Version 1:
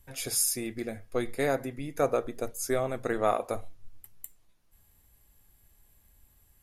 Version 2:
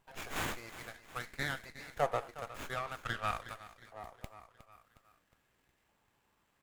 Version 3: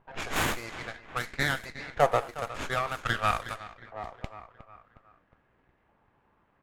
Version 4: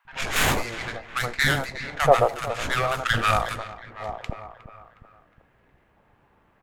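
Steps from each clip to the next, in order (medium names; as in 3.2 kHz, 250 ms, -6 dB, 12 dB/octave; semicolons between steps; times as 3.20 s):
feedback delay 362 ms, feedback 54%, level -14 dB; LFO high-pass saw up 0.51 Hz 810–2000 Hz; sliding maximum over 9 samples; trim -5 dB
level-controlled noise filter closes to 1.5 kHz, open at -37 dBFS; trim +9 dB
three bands offset in time highs, lows, mids 50/80 ms, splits 280/1100 Hz; trim +8 dB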